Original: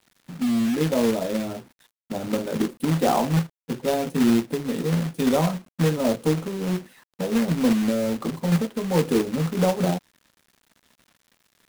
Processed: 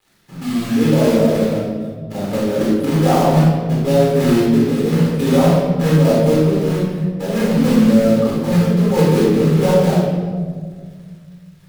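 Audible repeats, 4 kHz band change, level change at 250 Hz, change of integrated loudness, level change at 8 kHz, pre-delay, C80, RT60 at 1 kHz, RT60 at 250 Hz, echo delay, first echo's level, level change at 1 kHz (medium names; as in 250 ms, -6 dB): no echo, +5.5 dB, +8.0 dB, +8.5 dB, +4.0 dB, 7 ms, 2.0 dB, 1.5 s, 2.6 s, no echo, no echo, +6.5 dB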